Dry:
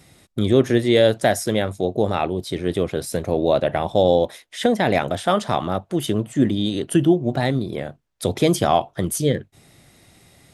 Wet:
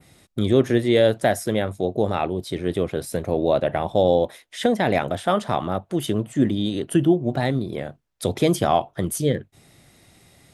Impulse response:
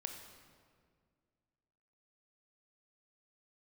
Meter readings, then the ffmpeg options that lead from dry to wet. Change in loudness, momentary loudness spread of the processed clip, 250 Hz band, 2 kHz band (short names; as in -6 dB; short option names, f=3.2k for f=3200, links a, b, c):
-1.5 dB, 9 LU, -1.5 dB, -2.0 dB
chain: -af "adynamicequalizer=threshold=0.00631:dfrequency=5600:dqfactor=0.82:tfrequency=5600:tqfactor=0.82:attack=5:release=100:ratio=0.375:range=3:mode=cutabove:tftype=bell,volume=-1.5dB"